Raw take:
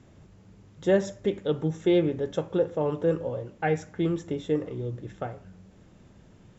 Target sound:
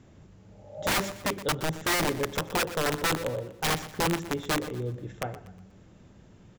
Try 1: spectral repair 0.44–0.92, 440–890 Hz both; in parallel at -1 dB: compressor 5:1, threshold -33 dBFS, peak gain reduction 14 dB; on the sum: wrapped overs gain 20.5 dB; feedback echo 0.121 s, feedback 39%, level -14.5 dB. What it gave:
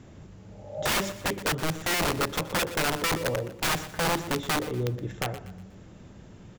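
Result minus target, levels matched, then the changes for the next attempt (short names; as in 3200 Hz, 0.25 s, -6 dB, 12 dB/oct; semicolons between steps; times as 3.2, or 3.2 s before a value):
compressor: peak gain reduction +14 dB
remove: compressor 5:1, threshold -33 dBFS, peak gain reduction 14 dB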